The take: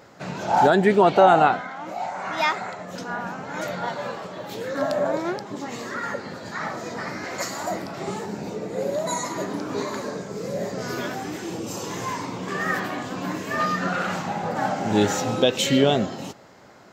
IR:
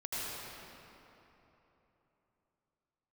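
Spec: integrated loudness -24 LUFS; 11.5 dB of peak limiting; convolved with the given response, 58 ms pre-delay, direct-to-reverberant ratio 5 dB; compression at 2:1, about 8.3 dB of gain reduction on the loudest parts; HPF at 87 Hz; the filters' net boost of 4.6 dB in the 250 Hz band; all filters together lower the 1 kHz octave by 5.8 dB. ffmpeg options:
-filter_complex "[0:a]highpass=87,equalizer=f=250:t=o:g=6.5,equalizer=f=1000:t=o:g=-9,acompressor=threshold=0.0501:ratio=2,alimiter=limit=0.0668:level=0:latency=1,asplit=2[s0][s1];[1:a]atrim=start_sample=2205,adelay=58[s2];[s1][s2]afir=irnorm=-1:irlink=0,volume=0.335[s3];[s0][s3]amix=inputs=2:normalize=0,volume=2.37"

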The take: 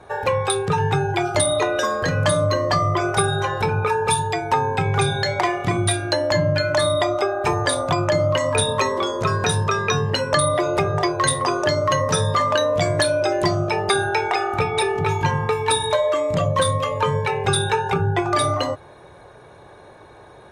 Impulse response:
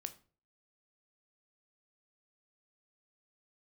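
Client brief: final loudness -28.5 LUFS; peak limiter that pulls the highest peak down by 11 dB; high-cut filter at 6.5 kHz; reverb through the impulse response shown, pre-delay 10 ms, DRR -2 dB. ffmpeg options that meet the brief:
-filter_complex "[0:a]lowpass=6500,alimiter=limit=0.178:level=0:latency=1,asplit=2[s0][s1];[1:a]atrim=start_sample=2205,adelay=10[s2];[s1][s2]afir=irnorm=-1:irlink=0,volume=1.78[s3];[s0][s3]amix=inputs=2:normalize=0,volume=0.316"

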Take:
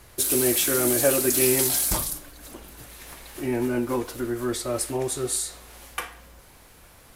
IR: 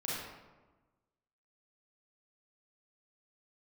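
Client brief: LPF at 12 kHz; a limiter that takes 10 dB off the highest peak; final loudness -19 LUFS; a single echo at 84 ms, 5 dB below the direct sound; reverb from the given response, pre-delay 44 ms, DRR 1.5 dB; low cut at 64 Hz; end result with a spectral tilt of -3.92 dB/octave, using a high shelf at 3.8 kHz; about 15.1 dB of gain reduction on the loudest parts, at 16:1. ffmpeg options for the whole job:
-filter_complex "[0:a]highpass=64,lowpass=12000,highshelf=f=3800:g=-6,acompressor=threshold=0.0282:ratio=16,alimiter=level_in=1.5:limit=0.0631:level=0:latency=1,volume=0.668,aecho=1:1:84:0.562,asplit=2[s0][s1];[1:a]atrim=start_sample=2205,adelay=44[s2];[s1][s2]afir=irnorm=-1:irlink=0,volume=0.562[s3];[s0][s3]amix=inputs=2:normalize=0,volume=5.62"

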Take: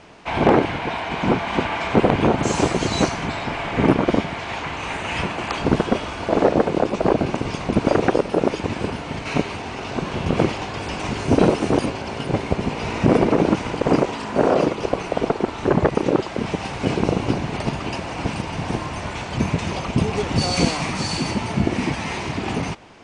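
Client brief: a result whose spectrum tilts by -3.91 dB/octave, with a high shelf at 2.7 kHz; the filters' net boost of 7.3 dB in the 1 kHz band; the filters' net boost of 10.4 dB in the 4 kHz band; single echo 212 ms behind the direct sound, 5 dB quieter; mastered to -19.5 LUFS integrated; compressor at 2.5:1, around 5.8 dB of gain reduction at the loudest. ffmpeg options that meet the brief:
-af "equalizer=f=1000:t=o:g=8,highshelf=f=2700:g=7.5,equalizer=f=4000:t=o:g=6.5,acompressor=threshold=0.158:ratio=2.5,aecho=1:1:212:0.562"

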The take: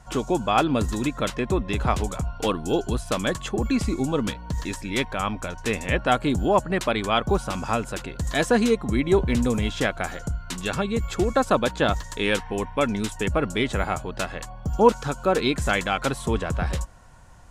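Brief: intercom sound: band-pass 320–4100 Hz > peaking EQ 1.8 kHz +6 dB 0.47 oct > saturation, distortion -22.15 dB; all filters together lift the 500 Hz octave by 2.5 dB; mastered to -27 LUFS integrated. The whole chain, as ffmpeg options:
-af "highpass=320,lowpass=4100,equalizer=f=500:t=o:g=4,equalizer=f=1800:t=o:w=0.47:g=6,asoftclip=threshold=0.531,volume=0.75"

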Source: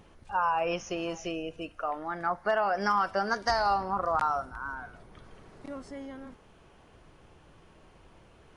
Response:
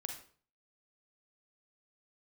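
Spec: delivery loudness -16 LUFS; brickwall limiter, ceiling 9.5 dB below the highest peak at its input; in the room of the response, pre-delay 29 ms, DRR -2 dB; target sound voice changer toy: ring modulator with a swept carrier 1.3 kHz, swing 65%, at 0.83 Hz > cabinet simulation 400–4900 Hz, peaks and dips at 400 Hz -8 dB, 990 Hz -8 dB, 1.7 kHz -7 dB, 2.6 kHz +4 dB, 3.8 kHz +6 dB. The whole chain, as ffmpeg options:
-filter_complex "[0:a]alimiter=level_in=1.12:limit=0.0631:level=0:latency=1,volume=0.891,asplit=2[s0][s1];[1:a]atrim=start_sample=2205,adelay=29[s2];[s1][s2]afir=irnorm=-1:irlink=0,volume=1.5[s3];[s0][s3]amix=inputs=2:normalize=0,aeval=exprs='val(0)*sin(2*PI*1300*n/s+1300*0.65/0.83*sin(2*PI*0.83*n/s))':c=same,highpass=400,equalizer=f=400:t=q:w=4:g=-8,equalizer=f=990:t=q:w=4:g=-8,equalizer=f=1700:t=q:w=4:g=-7,equalizer=f=2600:t=q:w=4:g=4,equalizer=f=3800:t=q:w=4:g=6,lowpass=f=4900:w=0.5412,lowpass=f=4900:w=1.3066,volume=7.94"

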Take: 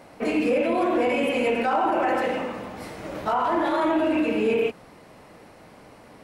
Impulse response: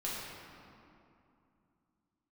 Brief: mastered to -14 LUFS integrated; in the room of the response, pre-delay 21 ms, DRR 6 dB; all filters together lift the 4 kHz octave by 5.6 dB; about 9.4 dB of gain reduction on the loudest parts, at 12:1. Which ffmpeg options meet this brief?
-filter_complex "[0:a]equalizer=f=4000:t=o:g=8.5,acompressor=threshold=0.0398:ratio=12,asplit=2[s0][s1];[1:a]atrim=start_sample=2205,adelay=21[s2];[s1][s2]afir=irnorm=-1:irlink=0,volume=0.316[s3];[s0][s3]amix=inputs=2:normalize=0,volume=7.08"

